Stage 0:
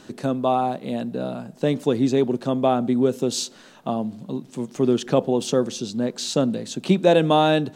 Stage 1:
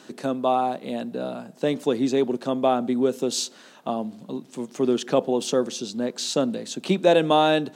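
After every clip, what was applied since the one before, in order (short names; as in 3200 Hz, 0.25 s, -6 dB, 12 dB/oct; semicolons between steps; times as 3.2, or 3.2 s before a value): HPF 190 Hz 12 dB/oct; low shelf 440 Hz -2.5 dB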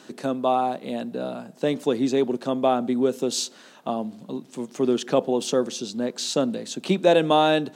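nothing audible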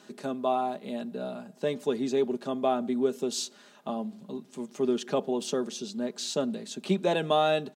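comb 4.9 ms, depth 52%; gain -7 dB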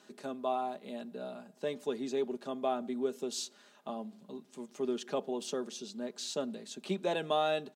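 low shelf 130 Hz -12 dB; gain -5.5 dB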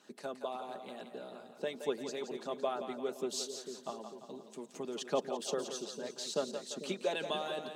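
harmonic-percussive split harmonic -13 dB; split-band echo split 450 Hz, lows 0.447 s, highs 0.172 s, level -8 dB; gain +2.5 dB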